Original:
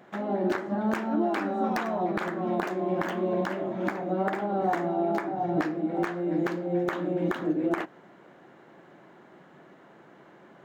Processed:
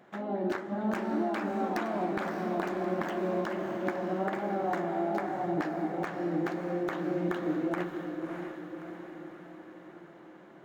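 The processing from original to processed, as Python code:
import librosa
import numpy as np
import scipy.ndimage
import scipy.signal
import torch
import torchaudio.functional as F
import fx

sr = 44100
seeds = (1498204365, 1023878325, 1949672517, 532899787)

y = fx.echo_diffused(x, sr, ms=621, feedback_pct=56, wet_db=-6)
y = F.gain(torch.from_numpy(y), -4.5).numpy()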